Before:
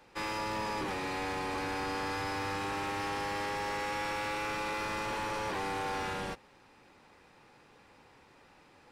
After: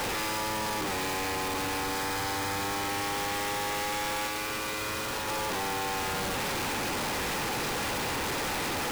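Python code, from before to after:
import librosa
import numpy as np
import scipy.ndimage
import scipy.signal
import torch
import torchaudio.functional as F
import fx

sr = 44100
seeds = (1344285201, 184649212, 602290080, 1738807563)

y = np.sign(x) * np.sqrt(np.mean(np.square(x)))
y = fx.notch(y, sr, hz=2700.0, q=12.0, at=(1.83, 2.9))
y = fx.notch_comb(y, sr, f0_hz=170.0, at=(4.27, 5.28))
y = y * librosa.db_to_amplitude(5.5)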